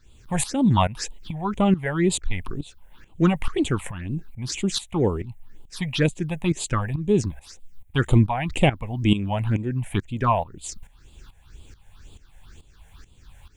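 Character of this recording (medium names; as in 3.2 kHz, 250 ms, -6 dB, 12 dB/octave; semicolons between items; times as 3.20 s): a quantiser's noise floor 12-bit, dither triangular; tremolo saw up 2.3 Hz, depth 80%; phasing stages 6, 2 Hz, lowest notch 320–1600 Hz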